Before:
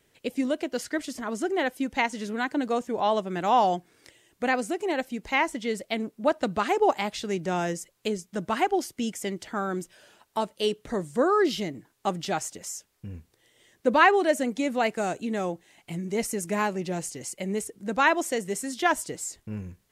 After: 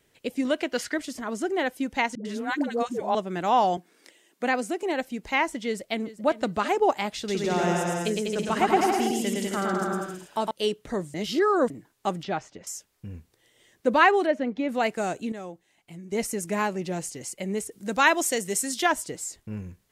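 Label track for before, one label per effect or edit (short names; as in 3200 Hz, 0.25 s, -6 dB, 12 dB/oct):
0.450000	0.940000	bell 2000 Hz +7.5 dB 2.5 oct
2.150000	3.150000	dispersion highs, late by 0.1 s, half as late at 490 Hz
3.770000	4.830000	steep high-pass 180 Hz 48 dB/oct
5.660000	6.340000	echo throw 0.39 s, feedback 25%, level -15.5 dB
7.170000	10.510000	bouncing-ball echo first gap 0.11 s, each gap 0.8×, echoes 7, each echo -2 dB
11.140000	11.700000	reverse
12.230000	12.670000	air absorption 210 m
14.260000	14.690000	air absorption 270 m
15.320000	16.120000	gain -9 dB
17.710000	18.860000	high shelf 3100 Hz +9 dB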